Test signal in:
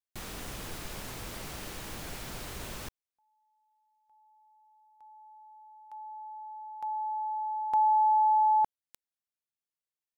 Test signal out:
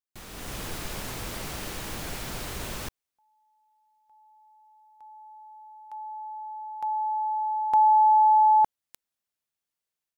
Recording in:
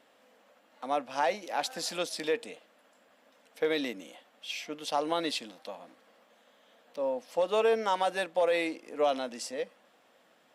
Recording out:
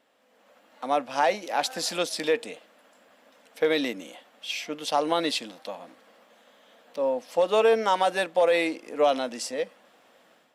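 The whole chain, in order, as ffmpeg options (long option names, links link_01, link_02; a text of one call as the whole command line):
ffmpeg -i in.wav -af "dynaudnorm=framelen=280:gausssize=3:maxgain=9.5dB,volume=-4dB" out.wav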